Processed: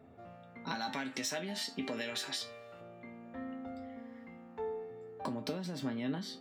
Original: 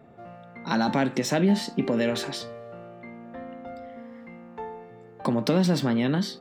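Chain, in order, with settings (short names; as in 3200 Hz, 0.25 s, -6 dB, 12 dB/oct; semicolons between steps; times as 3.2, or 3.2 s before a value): 0.75–2.81 tilt shelf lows -7.5 dB, about 930 Hz; compressor 12:1, threshold -28 dBFS, peak gain reduction 11.5 dB; resonator 88 Hz, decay 0.17 s, harmonics odd, mix 80%; gain +2 dB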